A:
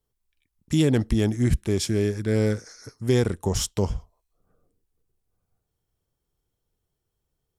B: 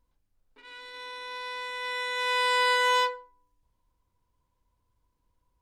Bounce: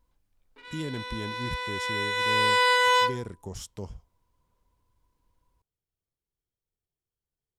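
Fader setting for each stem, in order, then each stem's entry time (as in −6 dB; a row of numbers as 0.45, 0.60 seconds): −14.0, +2.5 decibels; 0.00, 0.00 seconds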